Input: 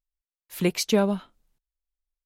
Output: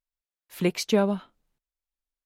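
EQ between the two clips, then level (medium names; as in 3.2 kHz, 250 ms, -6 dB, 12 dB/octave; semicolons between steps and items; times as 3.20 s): bass shelf 80 Hz -7.5 dB; treble shelf 4.6 kHz -6.5 dB; 0.0 dB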